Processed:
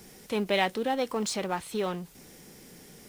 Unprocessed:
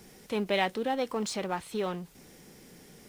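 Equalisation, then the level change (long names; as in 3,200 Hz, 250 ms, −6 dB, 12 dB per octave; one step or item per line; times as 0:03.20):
high-shelf EQ 5,500 Hz +4 dB
+1.5 dB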